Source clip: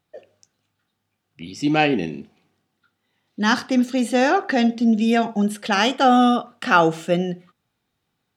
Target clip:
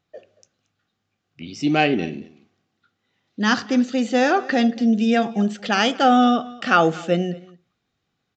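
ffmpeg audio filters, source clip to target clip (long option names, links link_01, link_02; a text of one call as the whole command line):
ffmpeg -i in.wav -filter_complex "[0:a]bandreject=frequency=900:width=9.6,asplit=2[link_01][link_02];[link_02]aecho=0:1:228:0.0841[link_03];[link_01][link_03]amix=inputs=2:normalize=0,aresample=16000,aresample=44100" out.wav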